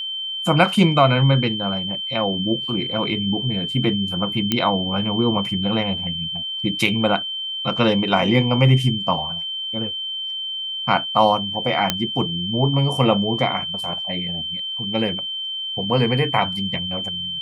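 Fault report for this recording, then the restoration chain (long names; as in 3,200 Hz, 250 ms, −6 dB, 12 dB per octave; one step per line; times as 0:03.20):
whistle 3,100 Hz −25 dBFS
0:04.52: click −5 dBFS
0:11.90: click −2 dBFS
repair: click removal
notch filter 3,100 Hz, Q 30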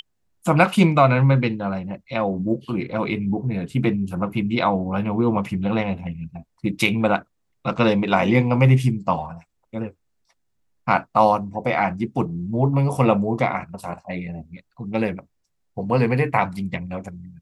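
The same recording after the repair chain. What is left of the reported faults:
none of them is left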